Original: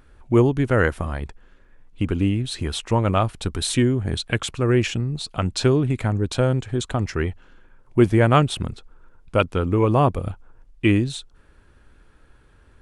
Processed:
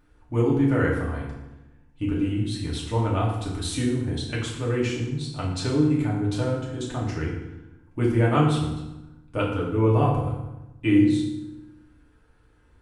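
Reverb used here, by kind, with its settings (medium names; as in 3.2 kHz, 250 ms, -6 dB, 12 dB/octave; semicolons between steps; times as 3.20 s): FDN reverb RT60 0.98 s, low-frequency decay 1.35×, high-frequency decay 0.75×, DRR -5 dB; trim -11.5 dB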